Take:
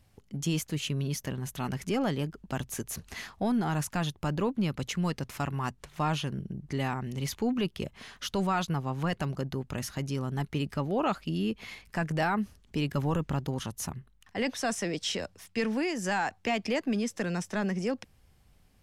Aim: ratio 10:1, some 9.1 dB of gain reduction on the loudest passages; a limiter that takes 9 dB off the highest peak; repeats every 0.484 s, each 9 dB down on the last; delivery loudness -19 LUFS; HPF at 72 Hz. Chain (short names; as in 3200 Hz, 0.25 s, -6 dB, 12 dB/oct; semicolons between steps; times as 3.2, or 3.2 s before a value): HPF 72 Hz; compressor 10:1, threshold -34 dBFS; limiter -31 dBFS; feedback echo 0.484 s, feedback 35%, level -9 dB; gain +21 dB